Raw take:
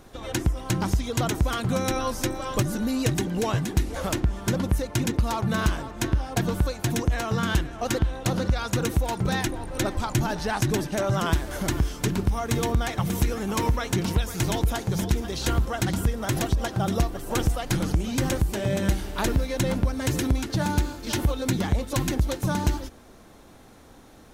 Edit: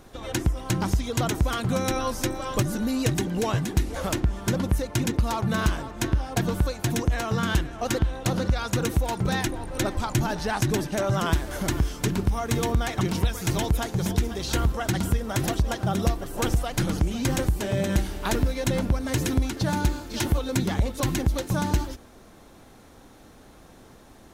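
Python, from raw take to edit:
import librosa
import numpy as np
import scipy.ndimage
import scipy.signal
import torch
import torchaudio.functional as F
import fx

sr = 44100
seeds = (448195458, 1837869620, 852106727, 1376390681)

y = fx.edit(x, sr, fx.cut(start_s=13.01, length_s=0.93), tone=tone)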